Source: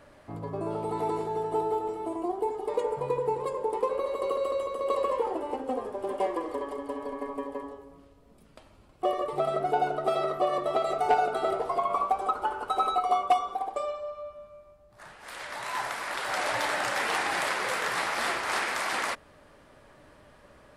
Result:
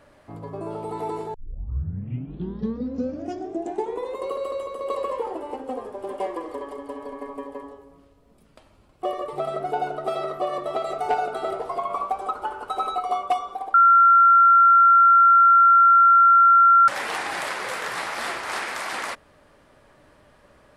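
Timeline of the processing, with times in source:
0:01.34: tape start 2.96 s
0:13.74–0:16.88: beep over 1,370 Hz −10.5 dBFS

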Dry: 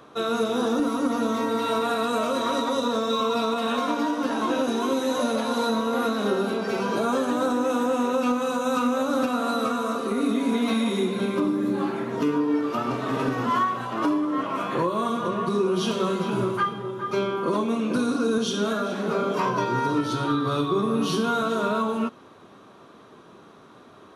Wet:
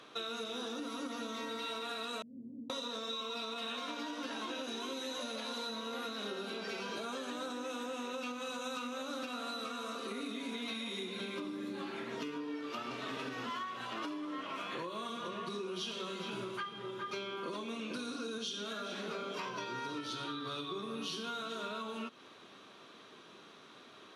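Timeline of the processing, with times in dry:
0:02.22–0:02.70: inverse Chebyshev low-pass filter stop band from 1,300 Hz, stop band 80 dB
whole clip: meter weighting curve D; downward compressor, threshold −30 dBFS; level −8 dB

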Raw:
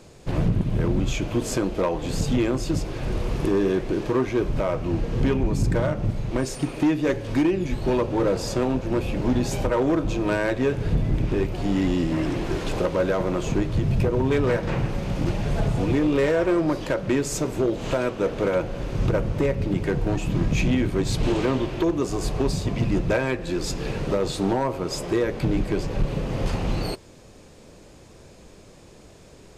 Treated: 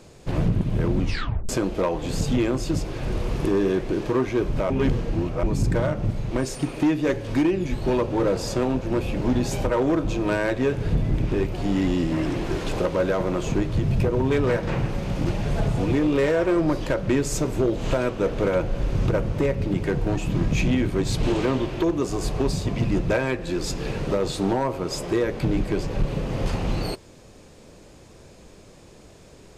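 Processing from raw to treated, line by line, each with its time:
0:01.00: tape stop 0.49 s
0:04.70–0:05.43: reverse
0:16.56–0:18.99: low-shelf EQ 90 Hz +9 dB

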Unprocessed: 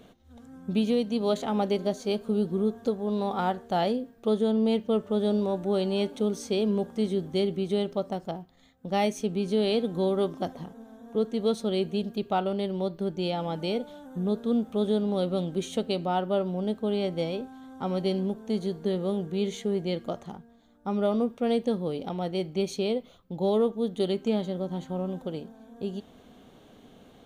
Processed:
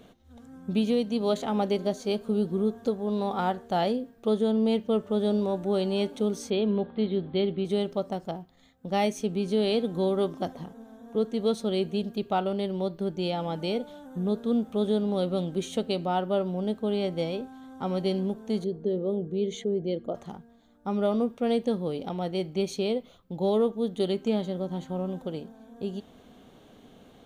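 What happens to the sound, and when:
0:06.50–0:07.65: Butterworth low-pass 4,300 Hz 96 dB per octave
0:18.64–0:20.15: spectral envelope exaggerated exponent 1.5

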